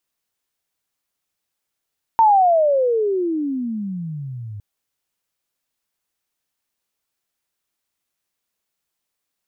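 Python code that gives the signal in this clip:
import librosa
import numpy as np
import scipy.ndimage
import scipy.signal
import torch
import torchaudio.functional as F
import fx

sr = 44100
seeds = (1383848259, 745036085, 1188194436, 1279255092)

y = fx.chirp(sr, length_s=2.41, from_hz=920.0, to_hz=100.0, law='logarithmic', from_db=-9.0, to_db=-29.5)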